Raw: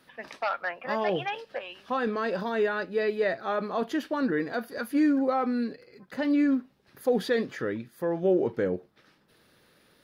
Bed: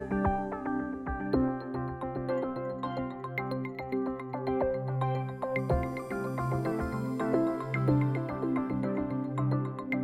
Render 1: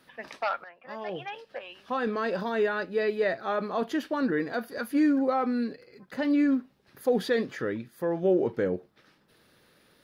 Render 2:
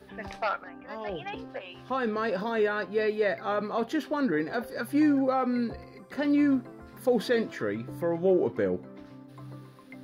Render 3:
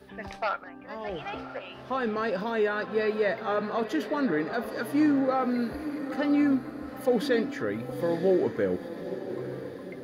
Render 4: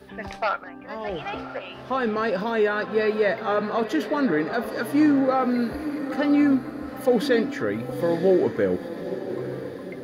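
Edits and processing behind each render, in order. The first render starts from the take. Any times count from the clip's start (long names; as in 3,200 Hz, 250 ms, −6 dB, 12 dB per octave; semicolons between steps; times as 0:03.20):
0:00.64–0:02.17: fade in, from −17.5 dB
mix in bed −15 dB
feedback delay with all-pass diffusion 924 ms, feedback 52%, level −10.5 dB
level +4.5 dB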